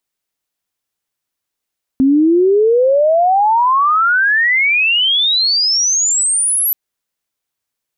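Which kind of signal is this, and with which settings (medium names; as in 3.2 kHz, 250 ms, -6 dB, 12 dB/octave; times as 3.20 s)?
sweep logarithmic 260 Hz -> 12 kHz -7.5 dBFS -> -12 dBFS 4.73 s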